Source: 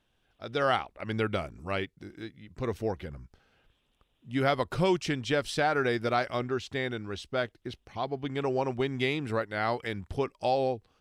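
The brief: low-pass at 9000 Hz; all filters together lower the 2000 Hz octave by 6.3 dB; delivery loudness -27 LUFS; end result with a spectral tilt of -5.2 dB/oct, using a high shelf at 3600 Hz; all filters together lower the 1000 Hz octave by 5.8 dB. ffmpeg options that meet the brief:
-af "lowpass=9k,equalizer=f=1k:t=o:g=-7.5,equalizer=f=2k:t=o:g=-4.5,highshelf=f=3.6k:g=-3.5,volume=6dB"

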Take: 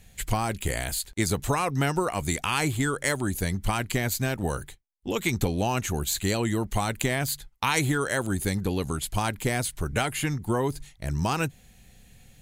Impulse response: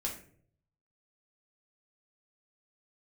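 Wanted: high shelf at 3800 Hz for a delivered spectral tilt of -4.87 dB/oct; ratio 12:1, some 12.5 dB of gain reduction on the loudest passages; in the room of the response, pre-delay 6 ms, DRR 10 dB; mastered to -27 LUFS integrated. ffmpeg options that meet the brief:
-filter_complex "[0:a]highshelf=f=3.8k:g=-6.5,acompressor=threshold=-34dB:ratio=12,asplit=2[a][b];[1:a]atrim=start_sample=2205,adelay=6[c];[b][c]afir=irnorm=-1:irlink=0,volume=-12dB[d];[a][d]amix=inputs=2:normalize=0,volume=12dB"

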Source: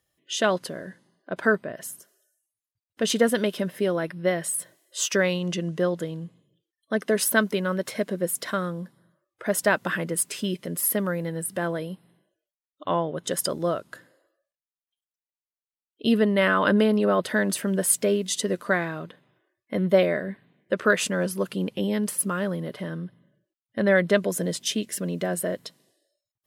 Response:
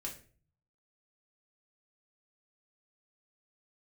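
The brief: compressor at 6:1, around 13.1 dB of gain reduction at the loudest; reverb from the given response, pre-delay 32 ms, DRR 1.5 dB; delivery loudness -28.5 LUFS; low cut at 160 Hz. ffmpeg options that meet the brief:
-filter_complex "[0:a]highpass=160,acompressor=threshold=-29dB:ratio=6,asplit=2[a][b];[1:a]atrim=start_sample=2205,adelay=32[c];[b][c]afir=irnorm=-1:irlink=0,volume=0dB[d];[a][d]amix=inputs=2:normalize=0,volume=2.5dB"

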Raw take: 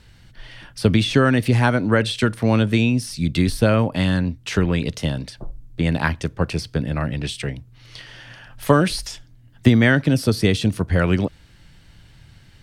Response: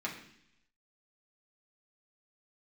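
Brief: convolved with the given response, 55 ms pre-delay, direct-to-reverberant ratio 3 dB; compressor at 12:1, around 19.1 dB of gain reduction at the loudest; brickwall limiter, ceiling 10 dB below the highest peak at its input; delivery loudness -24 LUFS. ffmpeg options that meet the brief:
-filter_complex "[0:a]acompressor=threshold=-29dB:ratio=12,alimiter=level_in=1dB:limit=-24dB:level=0:latency=1,volume=-1dB,asplit=2[a][b];[1:a]atrim=start_sample=2205,adelay=55[c];[b][c]afir=irnorm=-1:irlink=0,volume=-6.5dB[d];[a][d]amix=inputs=2:normalize=0,volume=11dB"

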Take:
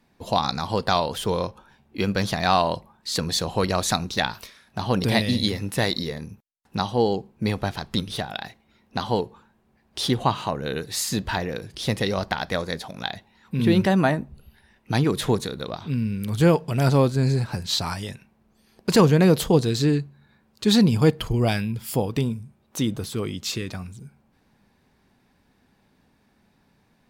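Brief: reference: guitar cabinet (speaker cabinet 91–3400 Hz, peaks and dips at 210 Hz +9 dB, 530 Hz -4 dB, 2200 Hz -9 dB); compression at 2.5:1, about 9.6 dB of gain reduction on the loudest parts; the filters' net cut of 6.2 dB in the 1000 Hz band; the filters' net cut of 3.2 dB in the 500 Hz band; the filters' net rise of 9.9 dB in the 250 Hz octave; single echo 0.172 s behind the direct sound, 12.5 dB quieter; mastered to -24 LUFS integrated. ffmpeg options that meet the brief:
-af "equalizer=f=250:t=o:g=7.5,equalizer=f=500:t=o:g=-3.5,equalizer=f=1k:t=o:g=-7,acompressor=threshold=-23dB:ratio=2.5,highpass=91,equalizer=f=210:t=q:w=4:g=9,equalizer=f=530:t=q:w=4:g=-4,equalizer=f=2.2k:t=q:w=4:g=-9,lowpass=f=3.4k:w=0.5412,lowpass=f=3.4k:w=1.3066,aecho=1:1:172:0.237"

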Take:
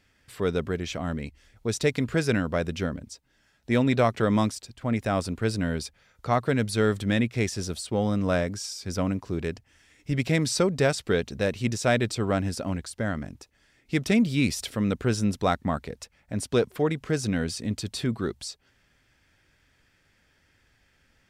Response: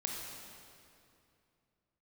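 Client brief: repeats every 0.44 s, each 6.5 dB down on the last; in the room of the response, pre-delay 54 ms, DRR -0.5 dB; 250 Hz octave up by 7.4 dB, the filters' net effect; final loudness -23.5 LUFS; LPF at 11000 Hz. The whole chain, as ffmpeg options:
-filter_complex "[0:a]lowpass=11k,equalizer=f=250:t=o:g=9,aecho=1:1:440|880|1320|1760|2200|2640:0.473|0.222|0.105|0.0491|0.0231|0.0109,asplit=2[a][b];[1:a]atrim=start_sample=2205,adelay=54[c];[b][c]afir=irnorm=-1:irlink=0,volume=-1.5dB[d];[a][d]amix=inputs=2:normalize=0,volume=-5.5dB"

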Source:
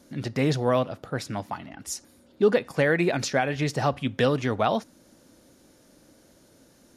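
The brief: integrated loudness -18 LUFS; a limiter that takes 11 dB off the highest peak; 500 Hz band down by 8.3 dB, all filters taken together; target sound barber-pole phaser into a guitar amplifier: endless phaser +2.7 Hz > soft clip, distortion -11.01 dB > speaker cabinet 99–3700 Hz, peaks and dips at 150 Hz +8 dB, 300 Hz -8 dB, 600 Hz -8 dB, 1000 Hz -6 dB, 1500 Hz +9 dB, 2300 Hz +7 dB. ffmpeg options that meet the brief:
-filter_complex "[0:a]equalizer=f=500:t=o:g=-6,alimiter=limit=-22.5dB:level=0:latency=1,asplit=2[a][b];[b]afreqshift=2.7[c];[a][c]amix=inputs=2:normalize=1,asoftclip=threshold=-34.5dB,highpass=99,equalizer=f=150:t=q:w=4:g=8,equalizer=f=300:t=q:w=4:g=-8,equalizer=f=600:t=q:w=4:g=-8,equalizer=f=1k:t=q:w=4:g=-6,equalizer=f=1.5k:t=q:w=4:g=9,equalizer=f=2.3k:t=q:w=4:g=7,lowpass=f=3.7k:w=0.5412,lowpass=f=3.7k:w=1.3066,volume=21dB"

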